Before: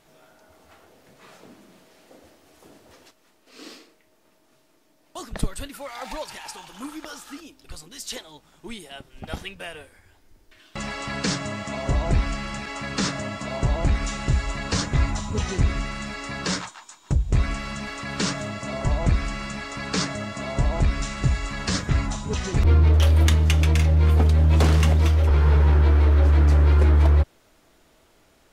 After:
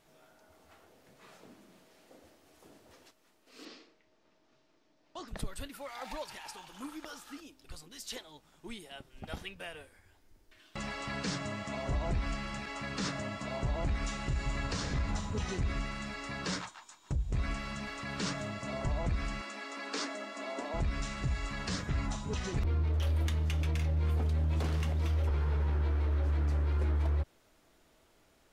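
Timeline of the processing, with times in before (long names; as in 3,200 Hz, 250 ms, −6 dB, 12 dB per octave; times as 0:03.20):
0:03.65–0:05.28: low-pass filter 6,000 Hz 24 dB per octave
0:14.20–0:14.84: thrown reverb, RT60 2.5 s, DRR 5.5 dB
0:19.41–0:20.74: elliptic high-pass filter 240 Hz
whole clip: brickwall limiter −17 dBFS; dynamic equaliser 7,800 Hz, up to −3 dB, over −50 dBFS, Q 1.3; level −7.5 dB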